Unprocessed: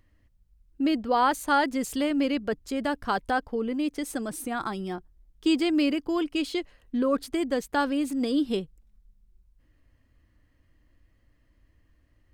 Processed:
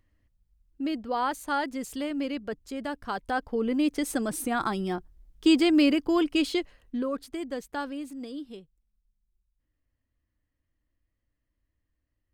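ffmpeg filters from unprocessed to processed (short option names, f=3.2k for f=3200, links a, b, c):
-af "volume=3dB,afade=t=in:st=3.21:d=0.56:silence=0.375837,afade=t=out:st=6.44:d=0.69:silence=0.316228,afade=t=out:st=7.68:d=0.89:silence=0.354813"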